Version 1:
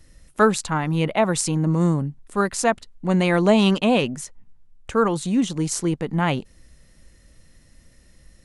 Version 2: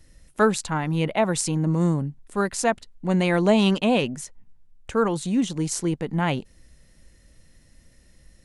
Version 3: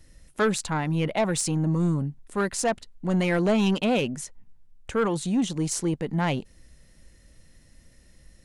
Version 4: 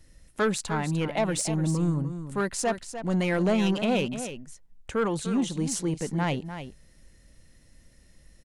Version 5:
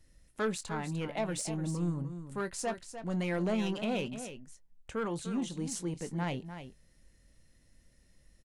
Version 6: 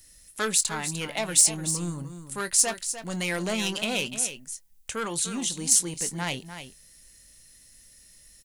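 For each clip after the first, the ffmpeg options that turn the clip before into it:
-af "equalizer=f=1200:w=5:g=-3.5,volume=0.794"
-af "asoftclip=type=tanh:threshold=0.15"
-af "aecho=1:1:299:0.299,volume=0.794"
-filter_complex "[0:a]asplit=2[s0][s1];[s1]adelay=23,volume=0.224[s2];[s0][s2]amix=inputs=2:normalize=0,volume=0.398"
-af "crystalizer=i=9.5:c=0"

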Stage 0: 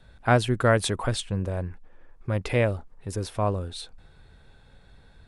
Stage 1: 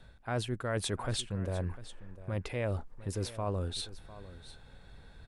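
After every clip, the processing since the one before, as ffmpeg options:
-af "areverse,acompressor=threshold=0.0316:ratio=10,areverse,aecho=1:1:701:0.158"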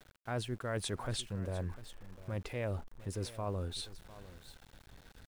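-af "aeval=exprs='val(0)*gte(abs(val(0)),0.00299)':c=same,volume=0.668"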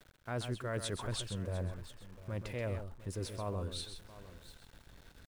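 -af "bandreject=f=780:w=12,aecho=1:1:130:0.376,volume=0.891"

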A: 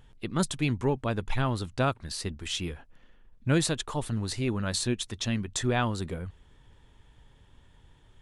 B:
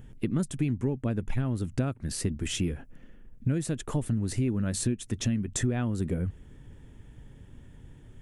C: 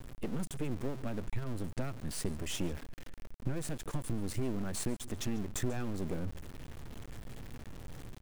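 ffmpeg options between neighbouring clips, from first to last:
-af "equalizer=f=125:t=o:w=1:g=4,equalizer=f=250:t=o:w=1:g=6,equalizer=f=1000:t=o:w=1:g=-9,equalizer=f=4000:t=o:w=1:g=-12,acompressor=threshold=0.0282:ratio=8,volume=2.11"
-af "aeval=exprs='val(0)+0.5*0.0224*sgn(val(0))':c=same,aecho=1:1:141:0.0794,aeval=exprs='max(val(0),0)':c=same,volume=0.631"

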